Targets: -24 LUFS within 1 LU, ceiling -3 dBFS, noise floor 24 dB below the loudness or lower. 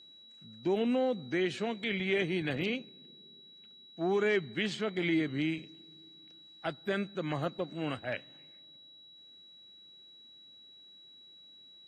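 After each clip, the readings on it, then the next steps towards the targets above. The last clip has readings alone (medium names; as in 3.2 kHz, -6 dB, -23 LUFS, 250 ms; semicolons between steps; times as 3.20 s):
steady tone 3.9 kHz; tone level -53 dBFS; loudness -33.0 LUFS; peak level -17.0 dBFS; loudness target -24.0 LUFS
-> band-stop 3.9 kHz, Q 30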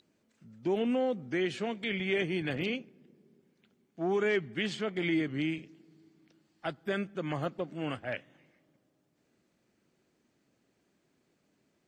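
steady tone not found; loudness -33.0 LUFS; peak level -17.0 dBFS; loudness target -24.0 LUFS
-> trim +9 dB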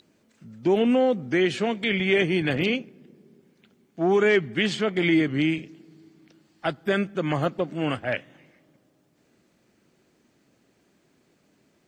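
loudness -24.0 LUFS; peak level -8.0 dBFS; noise floor -66 dBFS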